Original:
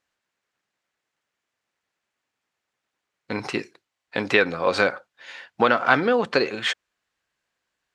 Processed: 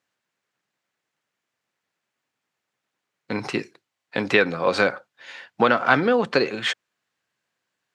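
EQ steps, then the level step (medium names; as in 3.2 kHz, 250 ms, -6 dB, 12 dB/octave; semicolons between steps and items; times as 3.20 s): high-pass 110 Hz 24 dB/octave; bass shelf 160 Hz +7 dB; 0.0 dB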